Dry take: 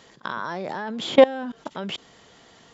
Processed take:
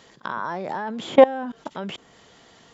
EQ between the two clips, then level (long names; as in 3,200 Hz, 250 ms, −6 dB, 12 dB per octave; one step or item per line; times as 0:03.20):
dynamic equaliser 4,300 Hz, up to −8 dB, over −47 dBFS, Q 1.1
dynamic equaliser 870 Hz, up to +5 dB, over −35 dBFS, Q 2
0.0 dB